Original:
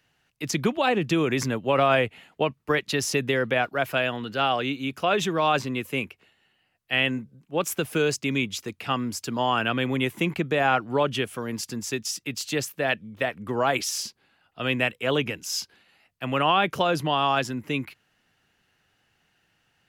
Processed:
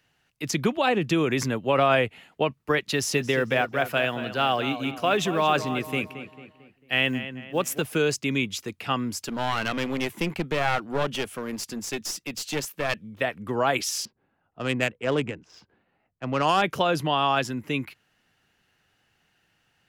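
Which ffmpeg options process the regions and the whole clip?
-filter_complex "[0:a]asettb=1/sr,asplit=3[a][b][c];[a]atrim=end=2.854[d];[b]atrim=start=2.85:end=7.82,asetpts=PTS-STARTPTS,afade=t=in:d=0.004:c=qsin,afade=t=out:st=4.966:d=0.004:c=qsin,acrusher=bits=9:mode=log:mix=0:aa=0.000001,asplit=2[e][f];[f]adelay=223,lowpass=f=3.2k:p=1,volume=-11dB,asplit=2[g][h];[h]adelay=223,lowpass=f=3.2k:p=1,volume=0.46,asplit=2[i][j];[j]adelay=223,lowpass=f=3.2k:p=1,volume=0.46,asplit=2[k][l];[l]adelay=223,lowpass=f=3.2k:p=1,volume=0.46,asplit=2[m][n];[n]adelay=223,lowpass=f=3.2k:p=1,volume=0.46[o];[e][g][i][k][m][o]amix=inputs=6:normalize=0,atrim=end_sample=219177[p];[c]atrim=start=7.816[q];[d][p]acrossfade=d=0.004:c1=hsin:c2=qsin[r];[r][q]acrossfade=d=0.004:c1=qsin:c2=hsin,asettb=1/sr,asplit=3[s][t][u];[s]atrim=end=9.234[v];[t]atrim=start=9.23:end=13.04,asetpts=PTS-STARTPTS,afade=t=in:d=0.004:c=qsin,afade=t=out:st=3.806:d=0.004:c=qsin,equalizer=f=120:t=o:w=0.24:g=-14.5,aeval=exprs='clip(val(0),-1,0.0299)':c=same[w];[u]atrim=start=13.036[x];[v][w]acrossfade=d=0.004:c1=hsin:c2=qsin[y];[y][x]acrossfade=d=0.004:c1=qsin:c2=hsin,asettb=1/sr,asplit=3[z][aa][ab];[z]atrim=end=14.054[ac];[aa]atrim=start=14.05:end=16.62,asetpts=PTS-STARTPTS,afade=t=in:d=0.004:c=qsin,afade=t=out:st=2.566:d=0.004:c=qsin,lowpass=9.8k,adynamicsmooth=sensitivity=1:basefreq=1.1k[ad];[ab]atrim=start=16.616[ae];[ac][ad]acrossfade=d=0.004:c1=hsin:c2=qsin[af];[af][ae]acrossfade=d=0.004:c1=qsin:c2=hsin"

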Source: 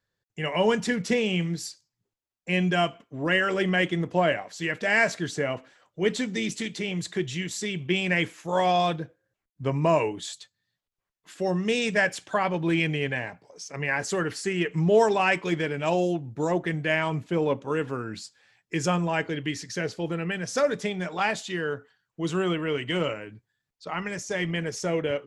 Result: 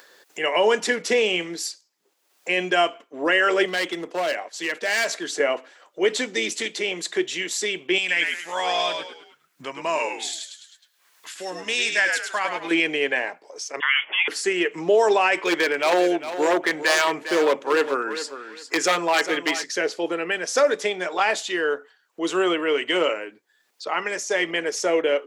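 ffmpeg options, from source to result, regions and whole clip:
-filter_complex "[0:a]asettb=1/sr,asplit=3[a][b][c];[a]atrim=end=3.654[d];[b]atrim=start=3.65:end=5.4,asetpts=PTS-STARTPTS,afade=t=in:d=0.004:c=qsin,afade=t=out:st=1.746:d=0.004:c=qsin,agate=range=-33dB:threshold=-41dB:ratio=3:release=100:detection=peak,asoftclip=type=hard:threshold=-20dB,acrossover=split=170|3000[e][f][g];[f]acompressor=threshold=-39dB:ratio=1.5:attack=3.2:release=140:knee=2.83:detection=peak[h];[e][h][g]amix=inputs=3:normalize=0[i];[c]atrim=start=5.396[j];[d][i]acrossfade=d=0.004:c1=hsin:c2=qsin[k];[k][j]acrossfade=d=0.004:c1=qsin:c2=hsin,asettb=1/sr,asplit=3[l][m][n];[l]atrim=end=7.984[o];[m]atrim=start=7.98:end=12.71,asetpts=PTS-STARTPTS,afade=t=in:d=0.004:c=qsin,afade=t=out:st=4.726:d=0.004:c=qsin,equalizer=f=440:w=0.58:g=-14.5,asplit=5[p][q][r][s][t];[q]adelay=104,afreqshift=-75,volume=-5dB[u];[r]adelay=208,afreqshift=-150,volume=-13.9dB[v];[s]adelay=312,afreqshift=-225,volume=-22.7dB[w];[t]adelay=416,afreqshift=-300,volume=-31.6dB[x];[p][u][v][w][x]amix=inputs=5:normalize=0,atrim=end_sample=208593[y];[n]atrim=start=12.706[z];[o][y]acrossfade=d=0.004:c1=hsin:c2=qsin[aa];[aa][z]acrossfade=d=0.004:c1=qsin:c2=hsin,asettb=1/sr,asplit=3[ab][ac][ad];[ab]atrim=end=13.804[ae];[ac]atrim=start=13.8:end=14.28,asetpts=PTS-STARTPTS,afade=t=in:d=0.004:c=qsin,afade=t=out:st=0.476:d=0.004:c=qsin,highpass=f=950:t=q:w=2.2,lowpass=f=3.2k:t=q:w=0.5098,lowpass=f=3.2k:t=q:w=0.6013,lowpass=f=3.2k:t=q:w=0.9,lowpass=f=3.2k:t=q:w=2.563,afreqshift=-3800[af];[ad]atrim=start=14.276[ag];[ae][af]acrossfade=d=0.004:c1=hsin:c2=qsin[ah];[ah][ag]acrossfade=d=0.004:c1=qsin:c2=hsin,asettb=1/sr,asplit=3[ai][aj][ak];[ai]atrim=end=15.384[al];[aj]atrim=start=15.38:end=19.64,asetpts=PTS-STARTPTS,afade=t=in:d=0.004:c=qsin,afade=t=out:st=4.256:d=0.004:c=qsin,equalizer=f=1.8k:w=0.78:g=5,aeval=exprs='0.126*(abs(mod(val(0)/0.126+3,4)-2)-1)':c=same,aecho=1:1:404|808:0.251|0.0427,atrim=end_sample=187866[am];[ak]atrim=start=19.636[an];[al][am]acrossfade=d=0.004:c1=hsin:c2=qsin[ao];[ao][an]acrossfade=d=0.004:c1=qsin:c2=hsin,highpass=f=330:w=0.5412,highpass=f=330:w=1.3066,acompressor=mode=upward:threshold=-40dB:ratio=2.5,alimiter=level_in=15.5dB:limit=-1dB:release=50:level=0:latency=1,volume=-8.5dB"

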